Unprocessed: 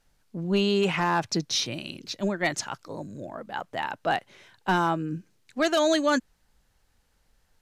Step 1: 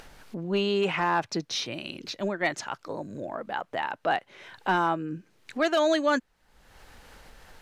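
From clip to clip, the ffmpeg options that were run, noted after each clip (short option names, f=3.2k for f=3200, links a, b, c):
-af "acompressor=mode=upward:threshold=-26dB:ratio=2.5,bass=f=250:g=-7,treble=f=4k:g=-8"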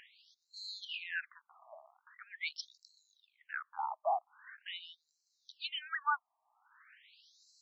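-af "asubboost=boost=6:cutoff=230,afftfilt=real='re*between(b*sr/1024,850*pow(5600/850,0.5+0.5*sin(2*PI*0.43*pts/sr))/1.41,850*pow(5600/850,0.5+0.5*sin(2*PI*0.43*pts/sr))*1.41)':imag='im*between(b*sr/1024,850*pow(5600/850,0.5+0.5*sin(2*PI*0.43*pts/sr))/1.41,850*pow(5600/850,0.5+0.5*sin(2*PI*0.43*pts/sr))*1.41)':win_size=1024:overlap=0.75,volume=-2dB"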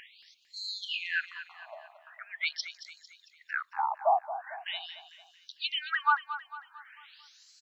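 -af "aecho=1:1:225|450|675|900|1125:0.237|0.109|0.0502|0.0231|0.0106,volume=7.5dB"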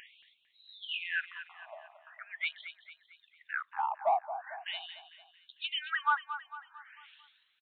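-filter_complex "[0:a]asplit=2[a][b];[b]asoftclip=type=tanh:threshold=-25dB,volume=-7dB[c];[a][c]amix=inputs=2:normalize=0,aresample=8000,aresample=44100,volume=-5dB"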